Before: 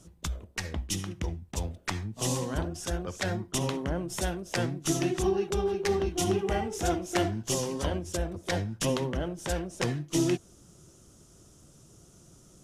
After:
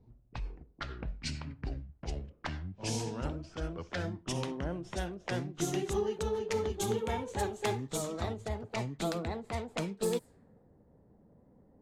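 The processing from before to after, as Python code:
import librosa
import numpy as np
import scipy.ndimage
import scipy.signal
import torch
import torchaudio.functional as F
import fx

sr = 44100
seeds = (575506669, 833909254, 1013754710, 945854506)

y = fx.speed_glide(x, sr, from_pct=69, to_pct=145)
y = fx.env_lowpass(y, sr, base_hz=750.0, full_db=-24.5)
y = y * librosa.db_to_amplitude(-5.0)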